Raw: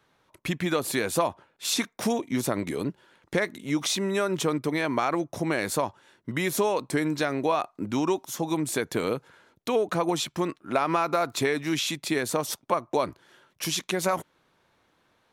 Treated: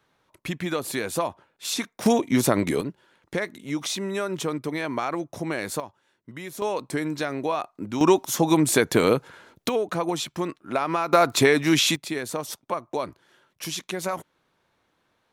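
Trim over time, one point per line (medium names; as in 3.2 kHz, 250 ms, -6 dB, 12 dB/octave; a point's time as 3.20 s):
-1.5 dB
from 2.06 s +6.5 dB
from 2.81 s -2 dB
from 5.80 s -10 dB
from 6.62 s -1.5 dB
from 8.01 s +8 dB
from 9.69 s -0.5 dB
from 11.13 s +7.5 dB
from 11.96 s -3 dB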